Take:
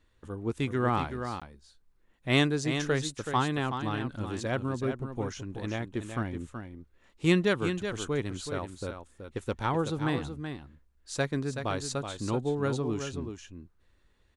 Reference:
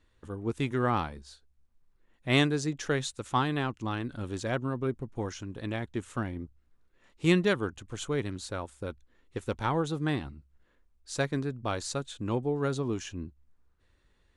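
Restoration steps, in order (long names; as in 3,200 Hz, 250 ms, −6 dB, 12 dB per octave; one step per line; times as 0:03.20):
repair the gap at 0:01.40, 16 ms
echo removal 376 ms −8 dB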